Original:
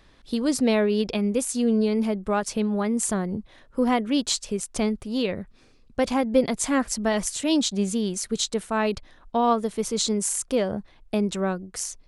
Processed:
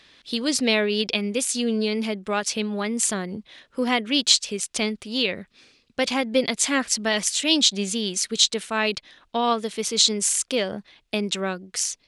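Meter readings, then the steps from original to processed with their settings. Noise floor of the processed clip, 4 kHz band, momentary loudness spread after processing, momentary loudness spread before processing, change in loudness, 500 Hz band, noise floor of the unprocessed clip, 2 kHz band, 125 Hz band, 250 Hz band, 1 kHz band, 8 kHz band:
-66 dBFS, +10.0 dB, 11 LU, 8 LU, +2.0 dB, -1.5 dB, -56 dBFS, +6.5 dB, -3.5 dB, -3.0 dB, -1.0 dB, +5.0 dB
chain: weighting filter D; gain -1 dB

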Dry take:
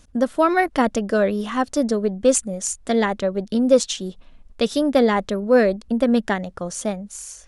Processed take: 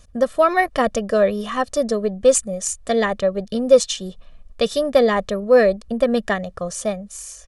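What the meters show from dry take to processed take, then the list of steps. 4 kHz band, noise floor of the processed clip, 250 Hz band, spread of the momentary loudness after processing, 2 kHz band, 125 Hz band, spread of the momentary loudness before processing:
+1.5 dB, -46 dBFS, -4.0 dB, 10 LU, +1.5 dB, n/a, 10 LU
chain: comb 1.7 ms, depth 59%

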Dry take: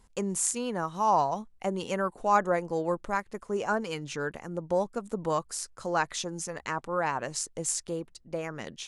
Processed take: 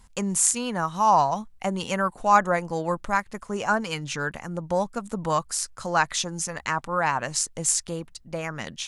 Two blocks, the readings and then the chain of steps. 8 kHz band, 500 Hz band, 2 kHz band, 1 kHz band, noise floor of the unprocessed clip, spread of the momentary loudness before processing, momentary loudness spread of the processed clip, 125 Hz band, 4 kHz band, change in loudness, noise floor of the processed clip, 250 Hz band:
+7.5 dB, +1.5 dB, +7.0 dB, +5.5 dB, -60 dBFS, 10 LU, 11 LU, +6.0 dB, +7.5 dB, +5.5 dB, -53 dBFS, +4.0 dB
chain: bell 400 Hz -9 dB 1.2 oct; gain +7.5 dB

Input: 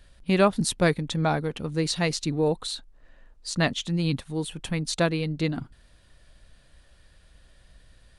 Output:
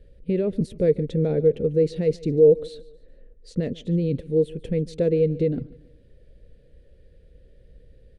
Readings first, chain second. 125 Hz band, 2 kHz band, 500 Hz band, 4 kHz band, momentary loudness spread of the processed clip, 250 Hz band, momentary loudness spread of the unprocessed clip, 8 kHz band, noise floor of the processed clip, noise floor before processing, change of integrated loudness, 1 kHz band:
+1.5 dB, under -15 dB, +8.0 dB, -15.0 dB, 12 LU, +1.0 dB, 10 LU, under -15 dB, -54 dBFS, -57 dBFS, +3.5 dB, under -15 dB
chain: limiter -19 dBFS, peak gain reduction 12 dB; EQ curve 320 Hz 0 dB, 480 Hz +12 dB, 720 Hz -16 dB, 1100 Hz -25 dB, 2000 Hz -12 dB, 7100 Hz -22 dB; feedback echo 0.145 s, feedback 39%, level -21 dB; gain +4 dB

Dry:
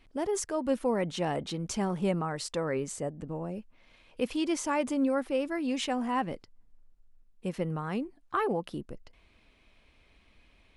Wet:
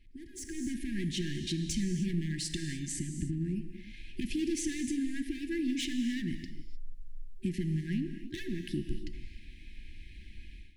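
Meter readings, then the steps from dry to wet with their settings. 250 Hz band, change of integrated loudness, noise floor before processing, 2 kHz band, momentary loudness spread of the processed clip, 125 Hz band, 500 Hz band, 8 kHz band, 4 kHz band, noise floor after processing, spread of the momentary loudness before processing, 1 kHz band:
-1.0 dB, -3.5 dB, -64 dBFS, -3.5 dB, 19 LU, +2.5 dB, -13.0 dB, 0.0 dB, +0.5 dB, -50 dBFS, 11 LU, under -40 dB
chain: hard clip -29 dBFS, distortion -9 dB; compressor, threshold -40 dBFS, peak gain reduction 9 dB; FFT band-reject 380–1600 Hz; low shelf 130 Hz +10.5 dB; non-linear reverb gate 0.33 s flat, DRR 7 dB; AGC gain up to 14 dB; gain -7 dB

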